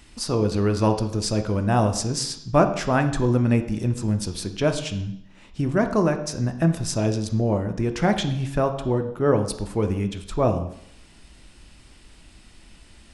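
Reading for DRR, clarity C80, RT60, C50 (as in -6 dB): 7.0 dB, 13.5 dB, 0.70 s, 10.5 dB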